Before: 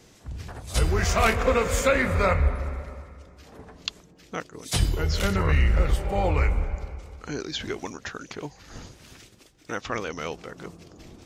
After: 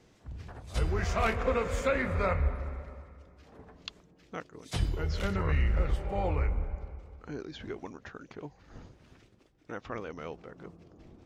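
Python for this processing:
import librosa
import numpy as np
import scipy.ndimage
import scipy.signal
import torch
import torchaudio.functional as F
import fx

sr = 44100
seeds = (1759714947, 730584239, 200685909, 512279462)

y = fx.lowpass(x, sr, hz=fx.steps((0.0, 2700.0), (6.35, 1200.0)), slope=6)
y = F.gain(torch.from_numpy(y), -6.5).numpy()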